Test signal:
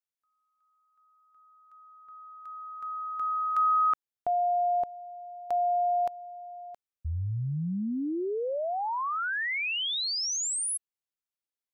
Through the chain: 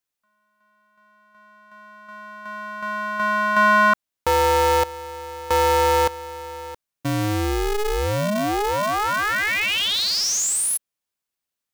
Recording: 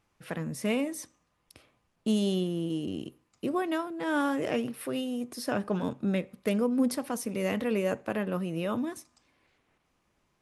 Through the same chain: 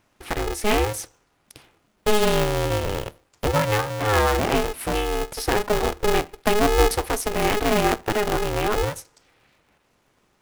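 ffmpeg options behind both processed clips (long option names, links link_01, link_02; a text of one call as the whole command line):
ffmpeg -i in.wav -af "aeval=exprs='val(0)*sgn(sin(2*PI*210*n/s))':channel_layout=same,volume=8.5dB" out.wav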